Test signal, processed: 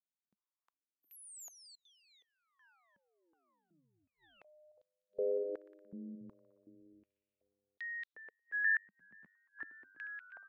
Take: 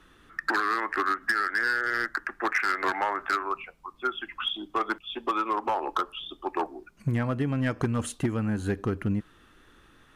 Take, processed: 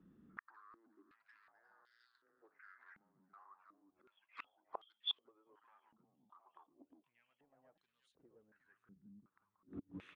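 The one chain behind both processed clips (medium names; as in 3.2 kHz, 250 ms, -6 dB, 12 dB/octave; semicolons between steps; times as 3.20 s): frequency-shifting echo 358 ms, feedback 53%, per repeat -98 Hz, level -3.5 dB; inverted gate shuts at -25 dBFS, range -35 dB; step-sequenced band-pass 2.7 Hz 200–3800 Hz; trim +4 dB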